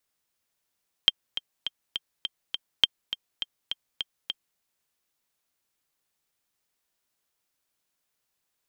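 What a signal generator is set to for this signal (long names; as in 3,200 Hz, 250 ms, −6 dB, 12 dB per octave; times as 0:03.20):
click track 205 BPM, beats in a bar 6, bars 2, 3,170 Hz, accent 12.5 dB −3.5 dBFS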